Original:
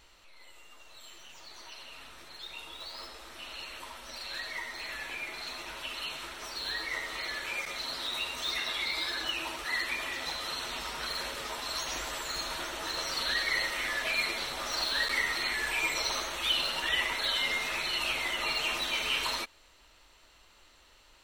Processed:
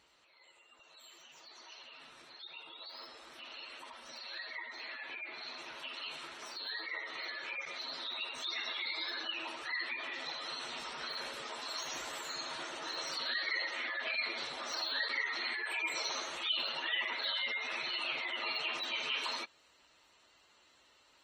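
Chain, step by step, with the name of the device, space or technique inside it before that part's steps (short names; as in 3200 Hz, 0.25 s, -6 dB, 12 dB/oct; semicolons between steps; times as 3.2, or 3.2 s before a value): noise-suppressed video call (HPF 120 Hz 12 dB/oct; spectral gate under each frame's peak -20 dB strong; gain -5 dB; Opus 24 kbps 48000 Hz)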